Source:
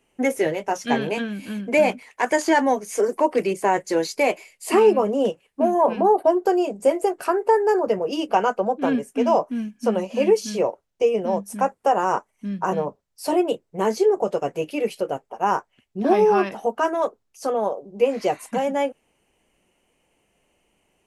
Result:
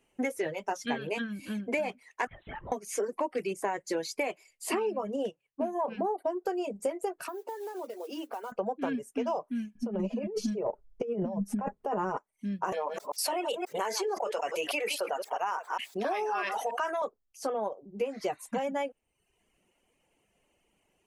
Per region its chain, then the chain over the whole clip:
2.27–2.72 HPF 990 Hz 6 dB/oct + compressor 3:1, threshold -38 dBFS + LPC vocoder at 8 kHz whisper
5.16–5.88 de-hum 65.22 Hz, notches 2 + upward expander, over -27 dBFS
7.27–8.52 compressor 12:1, threshold -28 dBFS + modulation noise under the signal 19 dB + rippled Chebyshev high-pass 230 Hz, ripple 3 dB
9.75–12.17 tilt -3.5 dB/oct + comb 4.8 ms, depth 48% + negative-ratio compressor -23 dBFS
12.72–17.02 reverse delay 0.133 s, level -13 dB + HPF 720 Hz + fast leveller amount 70%
whole clip: reverb removal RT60 0.69 s; dynamic EQ 1900 Hz, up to +3 dB, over -32 dBFS, Q 0.8; compressor, threshold -24 dBFS; gain -4 dB

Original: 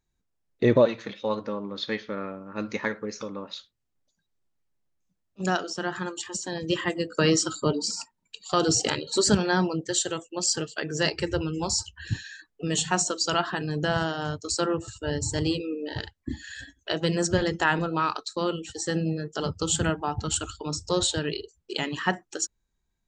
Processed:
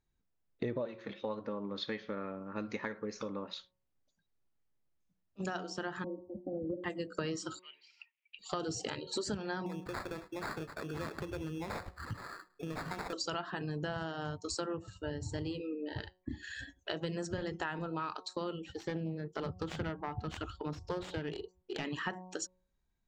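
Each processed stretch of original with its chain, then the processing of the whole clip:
0.7–1.71 high shelf 5300 Hz -9 dB + de-hum 173.3 Hz, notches 2
6.04–6.84 Chebyshev low-pass 750 Hz, order 8 + comb 3.6 ms + de-hum 177.8 Hz, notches 36
7.59–8.39 G.711 law mismatch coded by mu + Butterworth band-pass 2500 Hz, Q 2.9 + air absorption 79 m
9.66–13.13 narrowing echo 0.106 s, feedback 42%, band-pass 2500 Hz, level -23 dB + compressor 3:1, threshold -34 dBFS + sample-rate reducer 3000 Hz
14.79–16.43 air absorption 64 m + resonator 100 Hz, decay 0.22 s, mix 40%
18.64–21.85 self-modulated delay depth 0.22 ms + air absorption 150 m
whole clip: high shelf 6000 Hz -11.5 dB; de-hum 183.6 Hz, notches 6; compressor 6:1, threshold -32 dBFS; gain -2.5 dB

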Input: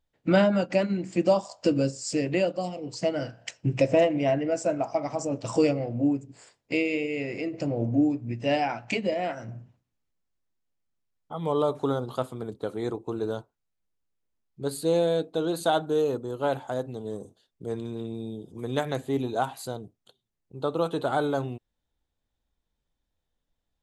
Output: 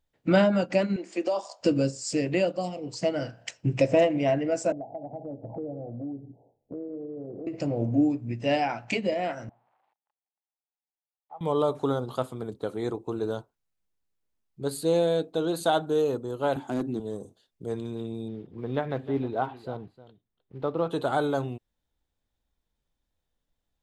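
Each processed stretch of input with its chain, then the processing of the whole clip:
0.96–1.6 HPF 320 Hz 24 dB/oct + notch 7600 Hz, Q 9.8 + compressor, threshold -22 dBFS
4.72–7.47 steep low-pass 840 Hz 96 dB/oct + compressor 3:1, threshold -36 dBFS + echo 0.166 s -21 dB
9.49–11.41 switching spikes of -28 dBFS + band-pass 810 Hz, Q 5.8 + air absorption 430 m
16.56–17 HPF 170 Hz + resonant low shelf 410 Hz +7 dB, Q 3 + overloaded stage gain 22.5 dB
18.28–20.9 block floating point 5-bit + air absorption 390 m + echo 0.307 s -16.5 dB
whole clip: dry

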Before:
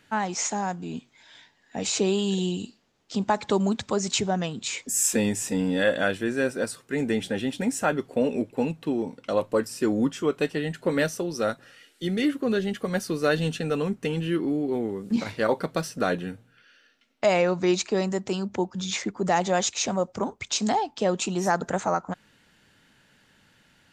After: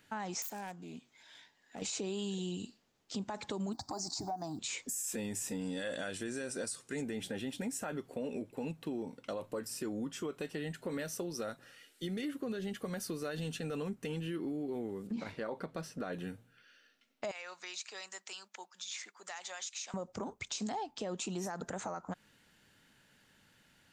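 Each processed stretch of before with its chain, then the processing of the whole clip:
0.42–1.82 self-modulated delay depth 0.2 ms + low shelf 150 Hz -7.5 dB + compressor 1.5:1, threshold -45 dBFS
3.73–4.59 companded quantiser 8-bit + EQ curve 140 Hz 0 dB, 210 Hz -9 dB, 310 Hz +9 dB, 470 Hz -18 dB, 740 Hz +13 dB, 3000 Hz -27 dB, 4600 Hz +10 dB, 6600 Hz -2 dB + compressor 3:1, threshold -27 dBFS
5.61–7.02 LPF 9600 Hz 24 dB/oct + tone controls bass 0 dB, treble +10 dB
15.07–16.13 LPF 2500 Hz 6 dB/oct + bell 110 Hz -7 dB 0.21 oct
17.31–19.94 HPF 1500 Hz + compressor 4:1, threshold -34 dBFS
whole clip: high shelf 10000 Hz +9 dB; limiter -19.5 dBFS; compressor 2.5:1, threshold -30 dBFS; gain -6.5 dB

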